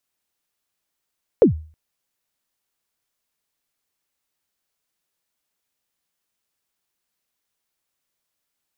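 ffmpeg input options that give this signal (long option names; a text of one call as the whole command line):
ffmpeg -f lavfi -i "aevalsrc='0.562*pow(10,-3*t/0.4)*sin(2*PI*(540*0.113/log(78/540)*(exp(log(78/540)*min(t,0.113)/0.113)-1)+78*max(t-0.113,0)))':duration=0.32:sample_rate=44100" out.wav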